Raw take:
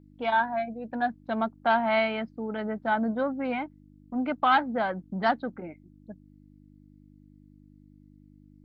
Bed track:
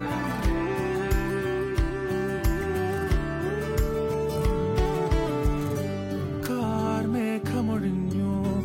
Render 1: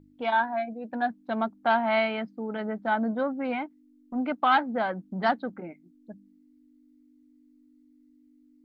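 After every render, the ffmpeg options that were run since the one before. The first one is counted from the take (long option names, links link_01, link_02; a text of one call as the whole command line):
ffmpeg -i in.wav -af "bandreject=frequency=50:width_type=h:width=4,bandreject=frequency=100:width_type=h:width=4,bandreject=frequency=150:width_type=h:width=4,bandreject=frequency=200:width_type=h:width=4" out.wav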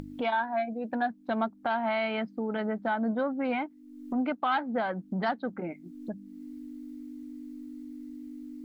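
ffmpeg -i in.wav -af "acompressor=mode=upward:threshold=-27dB:ratio=2.5,alimiter=limit=-20dB:level=0:latency=1:release=161" out.wav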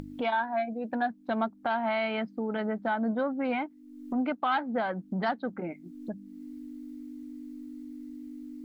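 ffmpeg -i in.wav -af anull out.wav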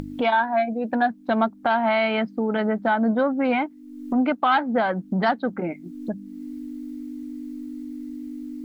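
ffmpeg -i in.wav -af "volume=8dB" out.wav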